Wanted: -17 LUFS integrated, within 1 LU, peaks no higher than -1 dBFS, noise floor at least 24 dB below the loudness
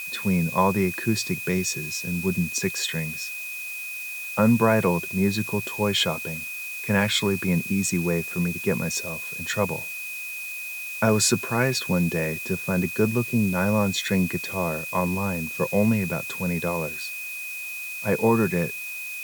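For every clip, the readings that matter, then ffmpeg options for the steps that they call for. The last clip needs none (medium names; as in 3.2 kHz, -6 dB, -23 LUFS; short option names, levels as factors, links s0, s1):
steady tone 2.5 kHz; tone level -32 dBFS; noise floor -34 dBFS; noise floor target -49 dBFS; loudness -24.5 LUFS; peak level -6.5 dBFS; loudness target -17.0 LUFS
-> -af "bandreject=f=2500:w=30"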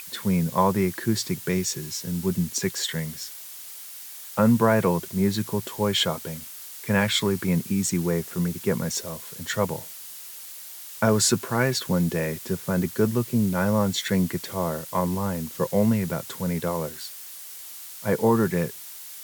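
steady tone not found; noise floor -41 dBFS; noise floor target -49 dBFS
-> -af "afftdn=nr=8:nf=-41"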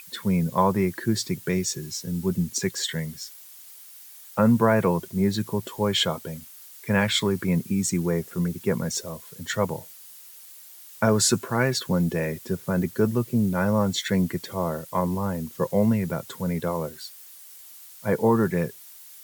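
noise floor -46 dBFS; noise floor target -49 dBFS
-> -af "afftdn=nr=6:nf=-46"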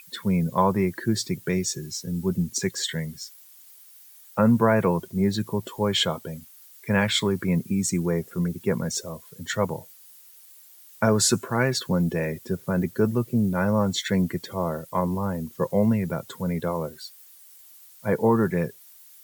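noise floor -50 dBFS; loudness -25.0 LUFS; peak level -7.0 dBFS; loudness target -17.0 LUFS
-> -af "volume=2.51,alimiter=limit=0.891:level=0:latency=1"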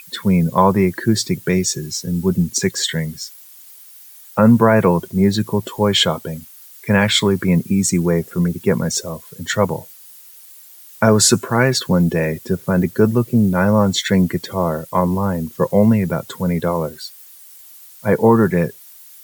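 loudness -17.0 LUFS; peak level -1.0 dBFS; noise floor -42 dBFS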